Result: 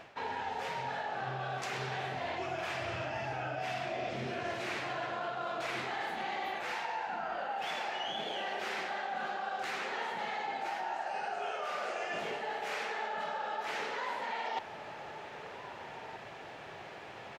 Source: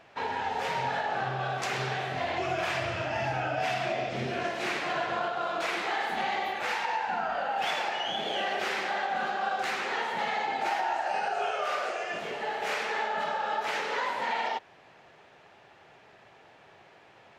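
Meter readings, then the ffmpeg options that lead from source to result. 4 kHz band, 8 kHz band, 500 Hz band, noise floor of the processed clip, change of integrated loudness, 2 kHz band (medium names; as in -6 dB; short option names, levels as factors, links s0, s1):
-6.5 dB, -6.5 dB, -6.0 dB, -47 dBFS, -7.0 dB, -6.5 dB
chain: -filter_complex "[0:a]areverse,acompressor=threshold=0.00794:ratio=16,areverse,asplit=2[s0][s1];[s1]adelay=1574,volume=0.355,highshelf=f=4000:g=-35.4[s2];[s0][s2]amix=inputs=2:normalize=0,volume=2.51"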